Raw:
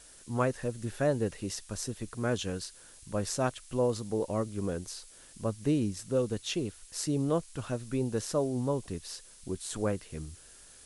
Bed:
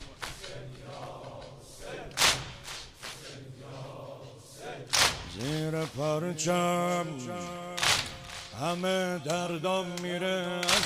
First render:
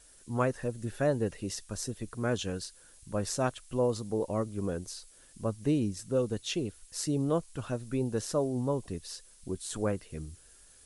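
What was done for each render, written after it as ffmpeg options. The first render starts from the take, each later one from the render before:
-af "afftdn=nr=6:nf=-54"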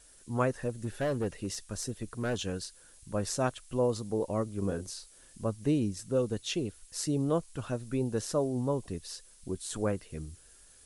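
-filter_complex "[0:a]asplit=3[a][b][c];[a]afade=t=out:st=0.68:d=0.02[d];[b]asoftclip=type=hard:threshold=-26.5dB,afade=t=in:st=0.68:d=0.02,afade=t=out:st=2.42:d=0.02[e];[c]afade=t=in:st=2.42:d=0.02[f];[d][e][f]amix=inputs=3:normalize=0,asettb=1/sr,asplit=3[g][h][i];[g]atrim=end=4.594[j];[h]atrim=start=4.59:end=5.44,asetpts=PTS-STARTPTS,afade=t=in:d=0.004:c=qsin,afade=t=out:st=0.846:d=0.004:c=qsin,asplit=2[k][l];[l]adelay=31,volume=-8dB[m];[k][m]amix=inputs=2:normalize=0,atrim=end_sample=37485[n];[i]atrim=start=5.436[o];[j][n]acrossfade=d=0.004:c1=hsin:c2=qsin[p];[p][o]acrossfade=d=0.004:c1=qsin:c2=hsin"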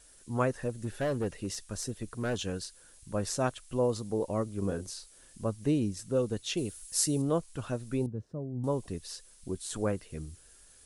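-filter_complex "[0:a]asettb=1/sr,asplit=3[a][b][c];[a]atrim=end=6.574[d];[b]atrim=start=6.57:end=7.22,asetpts=PTS-STARTPTS,afade=t=in:d=0.004:c=qsin,afade=t=out:st=0.646:d=0.004:c=qsin,aemphasis=mode=production:type=50kf[e];[c]atrim=start=7.216[f];[d][e]acrossfade=d=0.004:c1=hsin:c2=qsin[g];[g][f]acrossfade=d=0.004:c1=qsin:c2=hsin,asettb=1/sr,asplit=3[h][i][j];[h]atrim=end=8.064[k];[i]atrim=start=8.06:end=8.64,asetpts=PTS-STARTPTS,afade=t=in:d=0.004:c=qsin,afade=t=out:st=0.576:d=0.004:c=qsin,bandpass=f=120:t=q:w=1.1[l];[j]atrim=start=8.636[m];[k][l]acrossfade=d=0.004:c1=hsin:c2=qsin[n];[n][m]acrossfade=d=0.004:c1=qsin:c2=hsin"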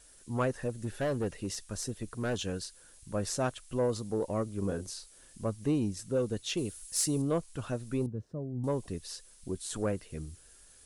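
-af "asoftclip=type=tanh:threshold=-20dB"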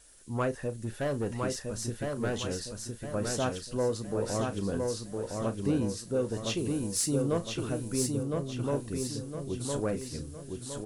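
-filter_complex "[0:a]asplit=2[a][b];[b]adelay=35,volume=-12.5dB[c];[a][c]amix=inputs=2:normalize=0,asplit=2[d][e];[e]aecho=0:1:1011|2022|3033|4044|5055:0.668|0.287|0.124|0.0531|0.0228[f];[d][f]amix=inputs=2:normalize=0"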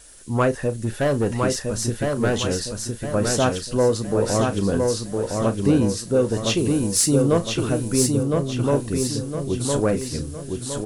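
-af "volume=10.5dB"

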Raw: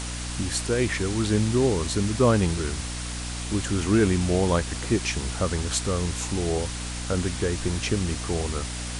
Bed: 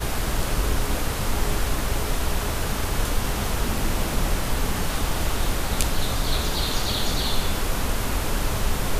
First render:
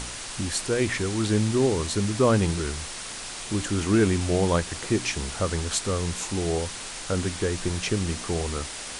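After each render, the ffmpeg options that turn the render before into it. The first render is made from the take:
-af "bandreject=f=60:t=h:w=4,bandreject=f=120:t=h:w=4,bandreject=f=180:t=h:w=4,bandreject=f=240:t=h:w=4,bandreject=f=300:t=h:w=4"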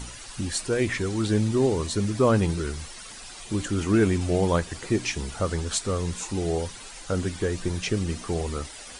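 -af "afftdn=nr=11:nf=-37"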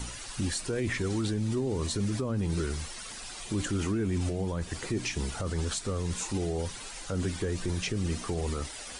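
-filter_complex "[0:a]acrossover=split=310[a][b];[b]acompressor=threshold=-29dB:ratio=4[c];[a][c]amix=inputs=2:normalize=0,alimiter=limit=-22dB:level=0:latency=1:release=21"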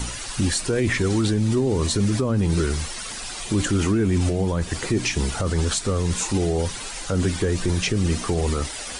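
-af "volume=9dB"

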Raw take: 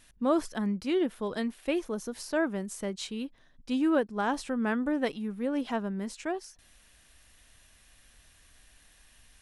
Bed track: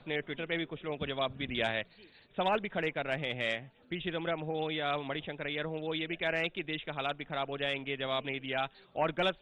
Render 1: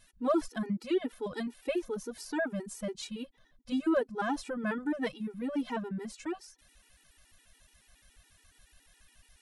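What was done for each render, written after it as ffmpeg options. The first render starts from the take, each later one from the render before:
-af "asoftclip=type=hard:threshold=-16dB,afftfilt=real='re*gt(sin(2*PI*7.1*pts/sr)*(1-2*mod(floor(b*sr/1024/250),2)),0)':imag='im*gt(sin(2*PI*7.1*pts/sr)*(1-2*mod(floor(b*sr/1024/250),2)),0)':win_size=1024:overlap=0.75"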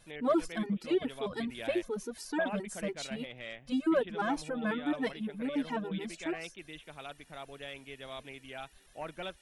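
-filter_complex "[1:a]volume=-10.5dB[a];[0:a][a]amix=inputs=2:normalize=0"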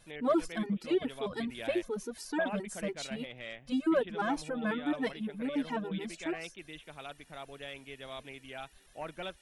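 -af anull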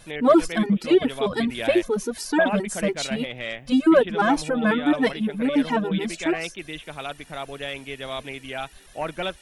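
-af "volume=12dB"

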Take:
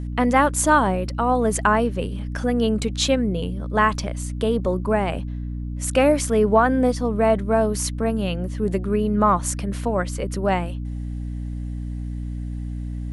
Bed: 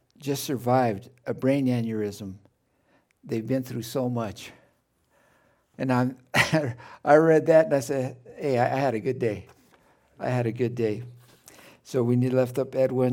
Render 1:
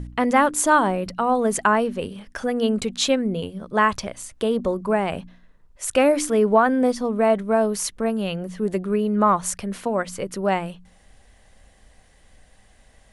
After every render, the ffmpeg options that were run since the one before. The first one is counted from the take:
-af "bandreject=f=60:t=h:w=4,bandreject=f=120:t=h:w=4,bandreject=f=180:t=h:w=4,bandreject=f=240:t=h:w=4,bandreject=f=300:t=h:w=4"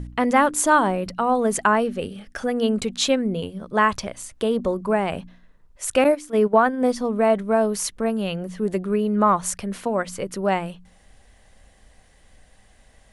-filter_complex "[0:a]asettb=1/sr,asplit=3[a][b][c];[a]atrim=end=1.834[d];[b]atrim=start=1.83:end=2.38,asetpts=PTS-STARTPTS,afade=t=in:d=0.004:c=qsin,afade=t=out:st=0.546:d=0.004:c=qsin,asuperstop=centerf=1000:order=4:qfactor=4.7[e];[c]atrim=start=2.376[f];[d][e]acrossfade=d=0.004:c1=hsin:c2=qsin[g];[g][f]acrossfade=d=0.004:c1=qsin:c2=hsin,asettb=1/sr,asplit=3[h][i][j];[h]atrim=end=6.044[k];[i]atrim=start=6.04:end=6.86,asetpts=PTS-STARTPTS,afade=t=in:d=0.004:c=qsin,afade=t=out:st=0.816:d=0.004:c=qsin,agate=range=-14dB:threshold=-20dB:ratio=16:release=100:detection=peak[l];[j]atrim=start=6.856[m];[k][l]acrossfade=d=0.004:c1=hsin:c2=qsin[n];[n][m]acrossfade=d=0.004:c1=qsin:c2=hsin"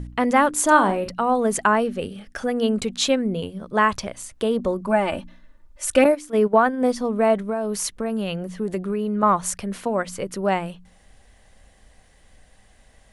-filter_complex "[0:a]asettb=1/sr,asplit=3[a][b][c];[a]atrim=end=0.644[d];[b]atrim=start=0.64:end=1.09,asetpts=PTS-STARTPTS,afade=t=in:d=0.004:c=qsin,afade=t=out:st=0.446:d=0.004:c=qsin,asplit=2[e][f];[f]adelay=46,volume=-7.5dB[g];[e][g]amix=inputs=2:normalize=0,atrim=end_sample=19845[h];[c]atrim=start=1.086[i];[d][h]acrossfade=d=0.004:c1=hsin:c2=qsin[j];[j][i]acrossfade=d=0.004:c1=qsin:c2=hsin,asettb=1/sr,asplit=3[k][l][m];[k]atrim=end=4.874[n];[l]atrim=start=4.87:end=6.06,asetpts=PTS-STARTPTS,afade=t=in:d=0.004:c=qsin,afade=t=out:st=1.186:d=0.004:c=qsin,aecho=1:1:3.4:0.73,atrim=end_sample=52479[o];[m]atrim=start=6.056[p];[n][o]acrossfade=d=0.004:c1=hsin:c2=qsin[q];[q][p]acrossfade=d=0.004:c1=qsin:c2=hsin,asettb=1/sr,asplit=3[r][s][t];[r]atrim=end=7.484[u];[s]atrim=start=7.48:end=9.23,asetpts=PTS-STARTPTS,afade=t=in:d=0.004:c=qsin,afade=t=out:st=1.746:d=0.004:c=qsin,acompressor=threshold=-20dB:ratio=6:attack=3.2:release=140:knee=1:detection=peak[v];[t]atrim=start=9.226[w];[u][v]acrossfade=d=0.004:c1=hsin:c2=qsin[x];[x][w]acrossfade=d=0.004:c1=qsin:c2=hsin"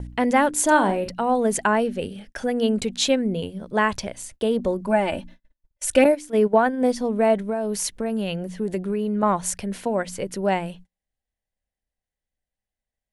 -af "agate=range=-35dB:threshold=-42dB:ratio=16:detection=peak,equalizer=f=1.2k:t=o:w=0.32:g=-9.5"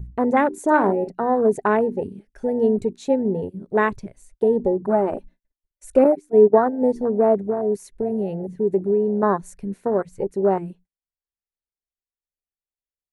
-af "afwtdn=0.0708,equalizer=f=400:t=o:w=0.33:g=10,equalizer=f=3.15k:t=o:w=0.33:g=-10,equalizer=f=5k:t=o:w=0.33:g=-6"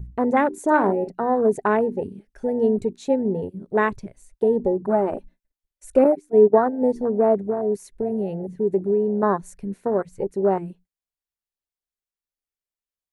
-af "volume=-1dB"

